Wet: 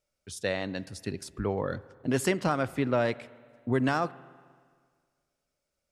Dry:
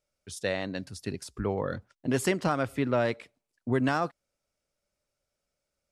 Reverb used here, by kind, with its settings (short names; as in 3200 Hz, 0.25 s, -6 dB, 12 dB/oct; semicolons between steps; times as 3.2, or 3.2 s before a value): spring tank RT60 1.8 s, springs 38/52 ms, chirp 60 ms, DRR 18.5 dB